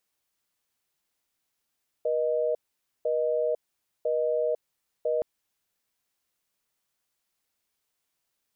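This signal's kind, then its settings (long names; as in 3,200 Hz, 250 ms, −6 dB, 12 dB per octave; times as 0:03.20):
call progress tone busy tone, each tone −26 dBFS 3.17 s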